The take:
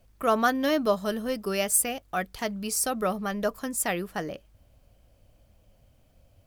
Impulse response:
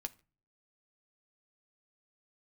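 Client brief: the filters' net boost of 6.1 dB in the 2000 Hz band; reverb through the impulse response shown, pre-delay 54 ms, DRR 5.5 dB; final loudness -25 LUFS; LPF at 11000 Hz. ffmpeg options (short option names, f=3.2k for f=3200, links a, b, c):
-filter_complex "[0:a]lowpass=11k,equalizer=f=2k:t=o:g=8,asplit=2[a][b];[1:a]atrim=start_sample=2205,adelay=54[c];[b][c]afir=irnorm=-1:irlink=0,volume=-3dB[d];[a][d]amix=inputs=2:normalize=0"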